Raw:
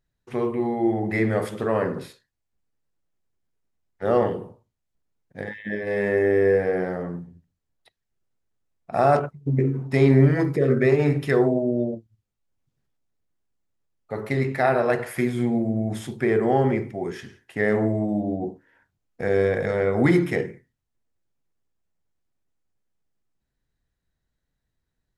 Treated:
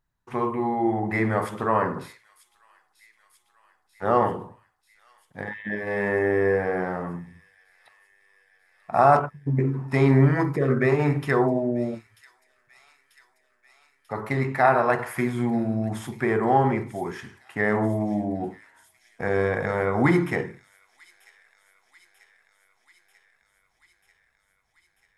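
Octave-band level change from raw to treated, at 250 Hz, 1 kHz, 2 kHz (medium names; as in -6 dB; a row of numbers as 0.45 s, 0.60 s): -1.5 dB, +4.5 dB, +1.5 dB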